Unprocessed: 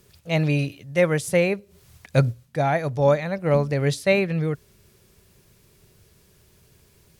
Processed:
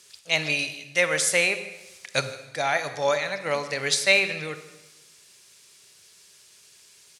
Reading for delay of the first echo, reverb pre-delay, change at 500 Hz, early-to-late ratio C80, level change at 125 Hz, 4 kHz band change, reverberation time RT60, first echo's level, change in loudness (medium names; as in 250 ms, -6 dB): 157 ms, 26 ms, -5.5 dB, 12.5 dB, -17.0 dB, +9.5 dB, 1.1 s, -19.0 dB, -1.5 dB